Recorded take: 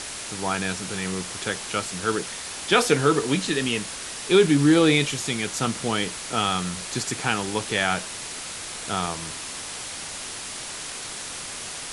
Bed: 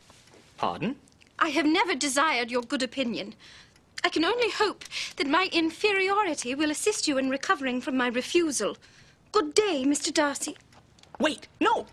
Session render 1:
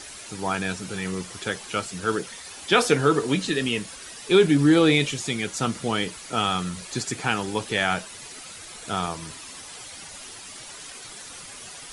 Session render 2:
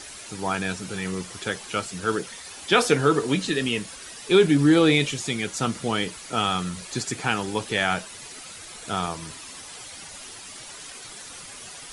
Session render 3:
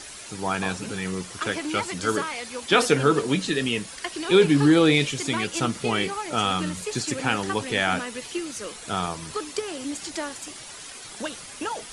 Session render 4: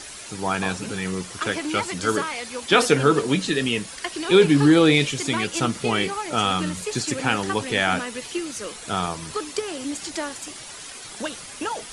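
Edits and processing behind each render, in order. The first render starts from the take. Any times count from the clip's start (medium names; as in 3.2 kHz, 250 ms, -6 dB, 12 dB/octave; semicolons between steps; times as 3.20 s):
noise reduction 10 dB, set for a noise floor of -35 dBFS
no audible change
add bed -7.5 dB
trim +2 dB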